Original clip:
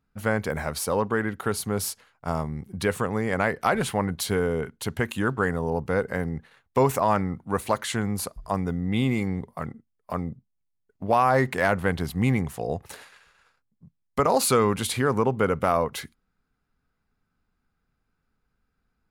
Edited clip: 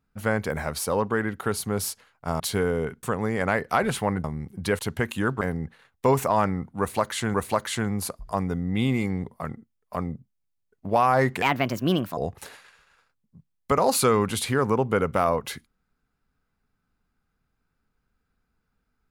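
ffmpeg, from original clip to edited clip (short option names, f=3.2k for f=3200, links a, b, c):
-filter_complex "[0:a]asplit=9[a][b][c][d][e][f][g][h][i];[a]atrim=end=2.402[j];[b]atrim=start=4.158:end=4.792[k];[c]atrim=start=2.948:end=4.162[l];[d]atrim=start=2.398:end=2.952[m];[e]atrim=start=4.788:end=5.412[n];[f]atrim=start=6.128:end=8.062[o];[g]atrim=start=7.508:end=11.594[p];[h]atrim=start=11.59:end=12.65,asetpts=PTS-STARTPTS,asetrate=62181,aresample=44100,atrim=end_sample=33153,asetpts=PTS-STARTPTS[q];[i]atrim=start=12.646[r];[j][k]acrossfade=d=0.004:c1=hsin:c2=hsin[s];[s][l]acrossfade=d=0.004:c1=hsin:c2=hsin[t];[t][m]acrossfade=d=0.004:c1=hsin:c2=hsin[u];[u][n]acrossfade=d=0.004:c1=hsin:c2=hsin[v];[v][o]acrossfade=d=0.004:c1=hsin:c2=hsin[w];[w][p]acrossfade=d=0.004:c1=hsin:c2=hsin[x];[x][q]acrossfade=d=0.004:c1=hsin:c2=hsin[y];[y][r]acrossfade=d=0.004:c1=hsin:c2=hsin"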